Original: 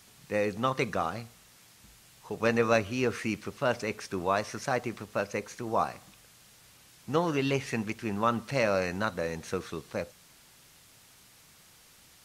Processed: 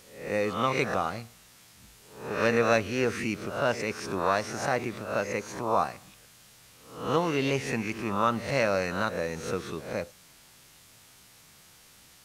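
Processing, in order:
peak hold with a rise ahead of every peak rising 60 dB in 0.56 s

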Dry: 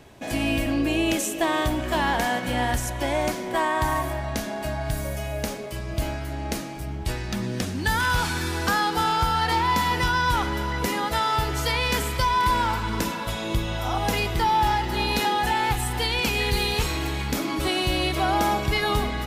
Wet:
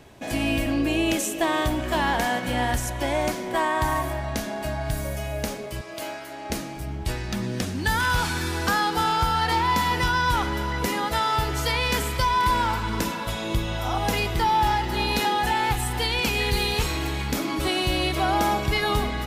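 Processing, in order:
0:05.81–0:06.50: high-pass filter 400 Hz 12 dB per octave

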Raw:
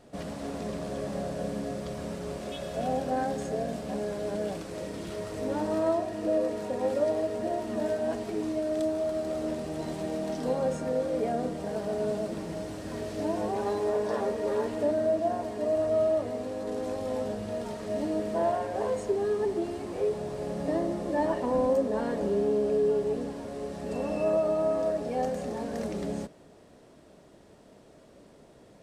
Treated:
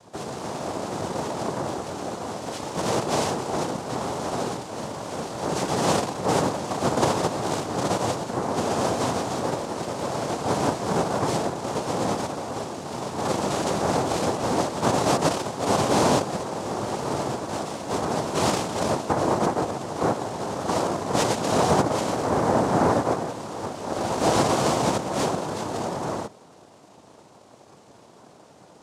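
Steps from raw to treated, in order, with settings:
cochlear-implant simulation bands 2
level +4.5 dB

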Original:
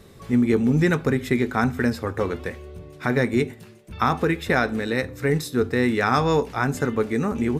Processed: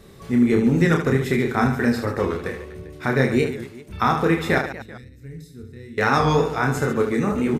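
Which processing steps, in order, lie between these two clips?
0:04.58–0:05.98: guitar amp tone stack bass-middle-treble 10-0-1
on a send: reverse bouncing-ball delay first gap 30 ms, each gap 1.5×, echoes 5
on the sum: wow of a warped record 45 rpm, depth 100 cents

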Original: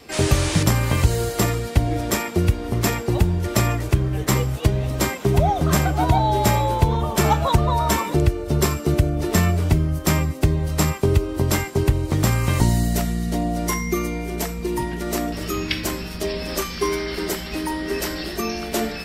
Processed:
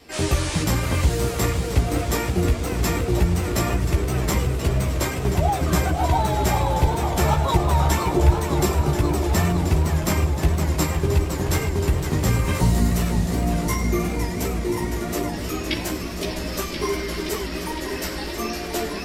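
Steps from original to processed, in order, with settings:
gain into a clipping stage and back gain 8.5 dB
multi-voice chorus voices 6, 1 Hz, delay 14 ms, depth 3.2 ms
feedback echo with a swinging delay time 517 ms, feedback 77%, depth 193 cents, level −7.5 dB

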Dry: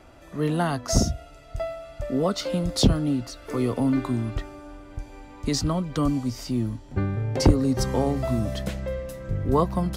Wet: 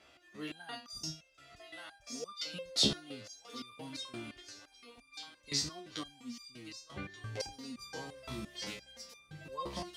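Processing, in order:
meter weighting curve D
feedback echo with a high-pass in the loop 1,180 ms, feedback 44%, high-pass 970 Hz, level −8 dB
step-sequenced resonator 5.8 Hz 70–1,200 Hz
level −4 dB

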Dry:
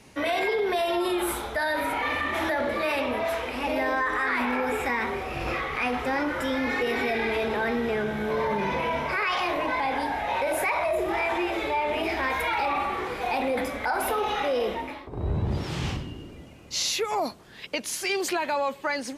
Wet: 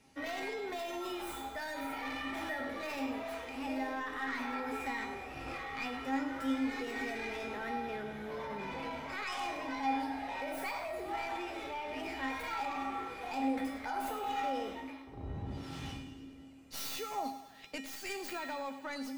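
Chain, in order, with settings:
stylus tracing distortion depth 0.14 ms
tuned comb filter 270 Hz, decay 0.56 s, harmonics odd, mix 90%
feedback echo with a high-pass in the loop 104 ms, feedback 66%, level −13 dB
level +4.5 dB

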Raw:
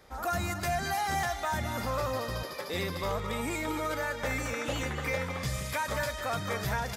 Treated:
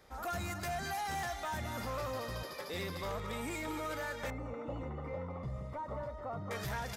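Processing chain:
soft clipping −27.5 dBFS, distortion −16 dB
0:04.30–0:06.51: Savitzky-Golay smoothing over 65 samples
level −4.5 dB

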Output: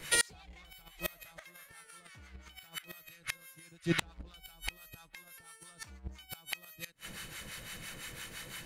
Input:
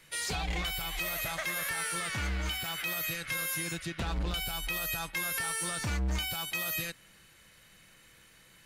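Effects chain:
two-band tremolo in antiphase 5.9 Hz, depth 70%, crossover 750 Hz
gate with flip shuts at −29 dBFS, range −34 dB
level +16 dB

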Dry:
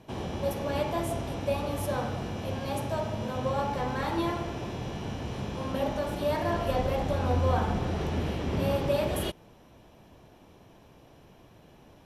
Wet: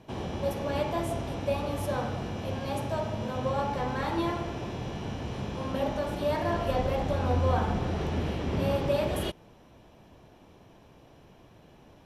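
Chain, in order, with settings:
high-shelf EQ 10,000 Hz −7 dB

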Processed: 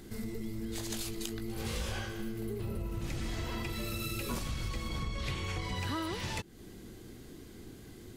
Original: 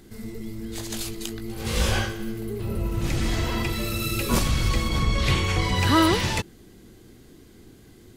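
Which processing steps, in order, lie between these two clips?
downward compressor 6 to 1, threshold −34 dBFS, peak gain reduction 18.5 dB

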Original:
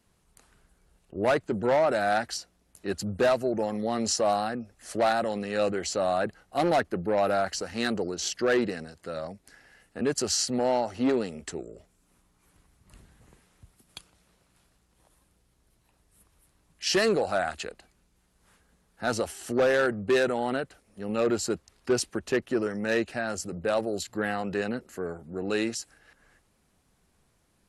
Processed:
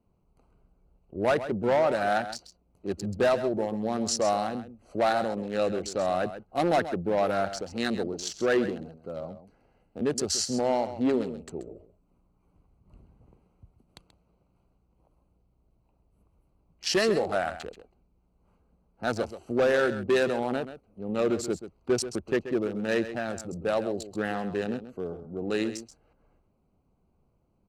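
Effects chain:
adaptive Wiener filter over 25 samples
single-tap delay 132 ms −12 dB

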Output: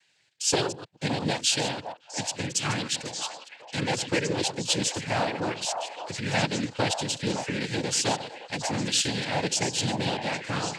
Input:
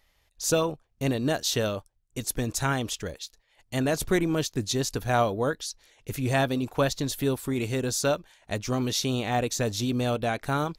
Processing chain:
delay that plays each chunk backwards 120 ms, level −13 dB
high shelf with overshoot 1,800 Hz +6.5 dB, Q 1.5
cochlear-implant simulation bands 8
echo through a band-pass that steps 563 ms, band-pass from 820 Hz, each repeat 1.4 octaves, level −4 dB
level −2.5 dB

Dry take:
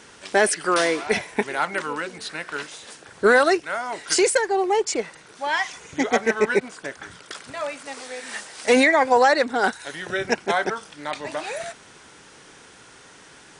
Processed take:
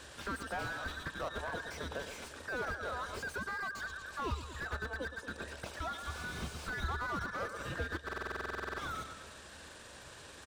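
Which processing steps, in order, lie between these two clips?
frequency inversion band by band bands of 2,000 Hz
on a send: feedback echo with a low-pass in the loop 150 ms, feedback 51%, low-pass 4,700 Hz, level −12 dB
on the sum: tempo change 1.3×
parametric band 73 Hz +14.5 dB 0.44 octaves
downward compressor 3 to 1, threshold −32 dBFS, peak gain reduction 15 dB
buffer that repeats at 0:08.04, samples 2,048, times 15
slew-rate limiting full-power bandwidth 32 Hz
level −4 dB

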